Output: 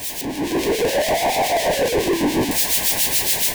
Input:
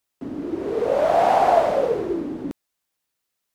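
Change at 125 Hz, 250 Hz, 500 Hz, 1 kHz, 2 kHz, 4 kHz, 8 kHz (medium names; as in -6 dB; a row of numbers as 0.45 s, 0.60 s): +8.0 dB, +6.0 dB, 0.0 dB, -2.5 dB, +10.5 dB, +19.0 dB, no reading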